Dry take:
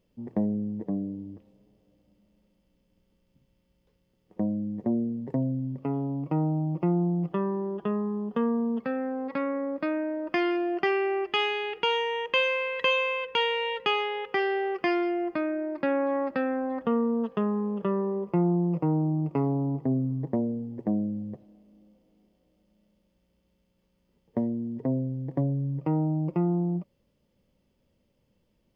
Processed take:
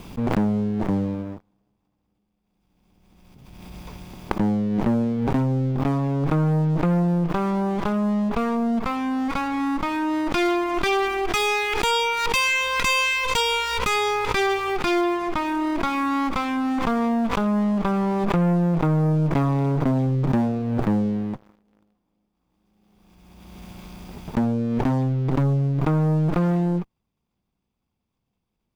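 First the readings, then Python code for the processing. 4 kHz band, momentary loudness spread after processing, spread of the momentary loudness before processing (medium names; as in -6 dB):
+5.5 dB, 5 LU, 6 LU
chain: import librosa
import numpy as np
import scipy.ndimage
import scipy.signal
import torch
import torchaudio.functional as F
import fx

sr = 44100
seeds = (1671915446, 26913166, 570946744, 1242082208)

y = fx.lower_of_two(x, sr, delay_ms=0.84)
y = fx.leveller(y, sr, passes=3)
y = fx.pre_swell(y, sr, db_per_s=28.0)
y = F.gain(torch.from_numpy(y), -1.5).numpy()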